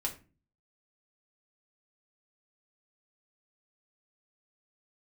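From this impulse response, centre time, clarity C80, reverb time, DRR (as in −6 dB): 12 ms, 18.0 dB, 0.35 s, −0.5 dB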